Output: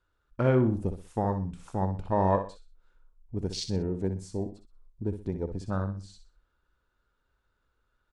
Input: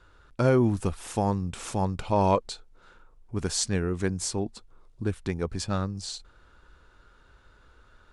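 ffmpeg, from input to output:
-filter_complex "[0:a]afwtdn=0.0282,asplit=2[a][b];[b]aecho=0:1:62|124|186:0.335|0.104|0.0322[c];[a][c]amix=inputs=2:normalize=0,volume=-2.5dB"

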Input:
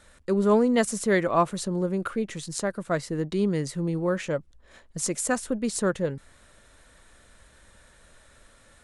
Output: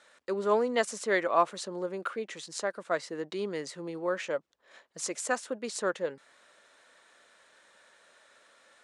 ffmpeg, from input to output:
-af "highpass=460,lowpass=6.5k,volume=-1.5dB"

